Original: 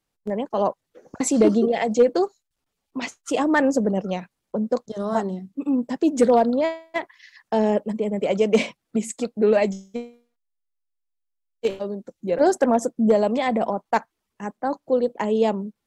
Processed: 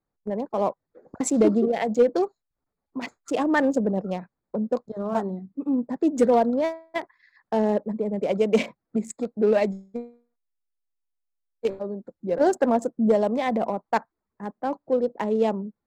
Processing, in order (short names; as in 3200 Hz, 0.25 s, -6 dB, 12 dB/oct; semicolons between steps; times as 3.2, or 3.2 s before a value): Wiener smoothing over 15 samples; gain -2 dB